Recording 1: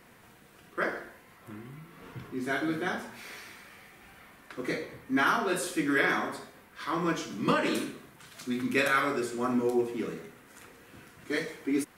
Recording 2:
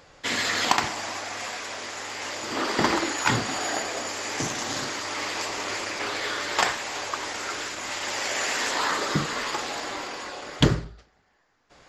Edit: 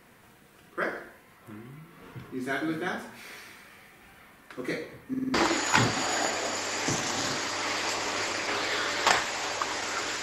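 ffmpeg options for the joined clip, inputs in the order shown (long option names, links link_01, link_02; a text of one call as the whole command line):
ffmpeg -i cue0.wav -i cue1.wav -filter_complex "[0:a]apad=whole_dur=10.22,atrim=end=10.22,asplit=5[link_01][link_02][link_03][link_04][link_05];[link_01]atrim=end=5.142[link_06];[link_02]atrim=start=5.088:end=5.142[link_07];[link_03]atrim=start=5.088:end=5.142[link_08];[link_04]atrim=start=5.088:end=5.142[link_09];[link_05]atrim=start=5.088:end=5.142[link_10];[1:a]atrim=start=2.858:end=7.74[link_11];[link_06][link_07]acrossfade=duration=0.004:curve1=hsin:curve2=hsin[link_12];[link_12][link_08]acrossfade=duration=0.004:curve1=hsin:curve2=hsin[link_13];[link_13][link_09]acrossfade=duration=0.004:curve1=hsin:curve2=hsin[link_14];[link_14][link_10]acrossfade=duration=0.004:curve1=hsin:curve2=hsin[link_15];[link_15][link_11]acrossfade=duration=0.004:curve1=hsin:curve2=hsin" out.wav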